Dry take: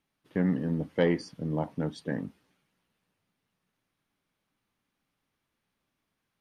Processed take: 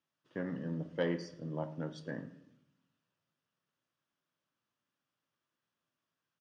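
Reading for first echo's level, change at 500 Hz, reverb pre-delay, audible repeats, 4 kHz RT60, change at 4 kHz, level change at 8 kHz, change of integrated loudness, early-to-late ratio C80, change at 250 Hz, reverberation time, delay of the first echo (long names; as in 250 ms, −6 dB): −21.5 dB, −7.5 dB, 19 ms, 1, 0.50 s, −6.0 dB, −6.5 dB, −9.0 dB, 15.0 dB, −9.5 dB, 0.70 s, 110 ms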